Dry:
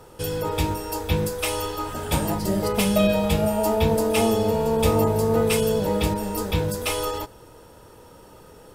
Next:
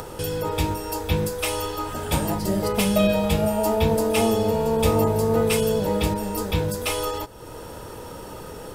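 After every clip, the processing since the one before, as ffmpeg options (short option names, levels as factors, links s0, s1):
-af "acompressor=mode=upward:threshold=0.0501:ratio=2.5"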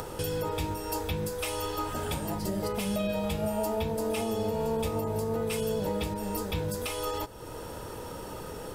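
-af "alimiter=limit=0.119:level=0:latency=1:release=389,volume=0.75"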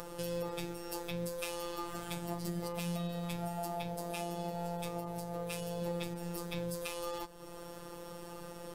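-af "afftfilt=real='hypot(re,im)*cos(PI*b)':imag='0':win_size=1024:overlap=0.75,aeval=exprs='0.211*(cos(1*acos(clip(val(0)/0.211,-1,1)))-cos(1*PI/2))+0.00188*(cos(7*acos(clip(val(0)/0.211,-1,1)))-cos(7*PI/2))':c=same,volume=0.708"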